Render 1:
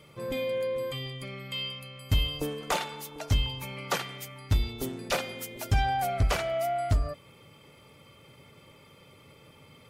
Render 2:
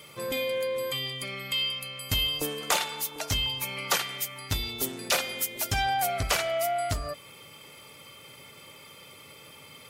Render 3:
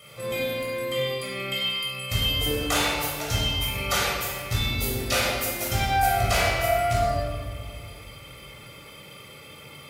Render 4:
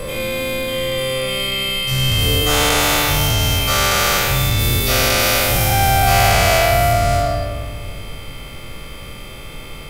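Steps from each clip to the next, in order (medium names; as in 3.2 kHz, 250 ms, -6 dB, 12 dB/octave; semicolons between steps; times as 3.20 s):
tilt EQ +2.5 dB/octave; in parallel at -2 dB: compression, threshold -37 dBFS, peak gain reduction 14.5 dB
modulation noise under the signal 32 dB; reverberation RT60 1.7 s, pre-delay 17 ms, DRR -6.5 dB; trim -5.5 dB
every event in the spectrogram widened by 480 ms; added noise brown -34 dBFS; trim +2 dB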